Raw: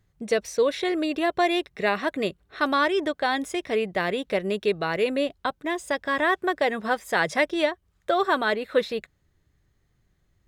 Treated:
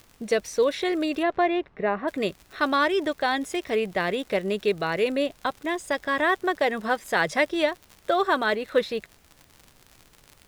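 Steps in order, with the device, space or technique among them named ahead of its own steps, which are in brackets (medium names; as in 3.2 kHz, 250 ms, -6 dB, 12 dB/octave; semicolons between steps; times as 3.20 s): vinyl LP (crackle 76 per s -34 dBFS; pink noise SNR 33 dB); 1.22–2.07 s: low-pass 2.9 kHz -> 1.1 kHz 12 dB/octave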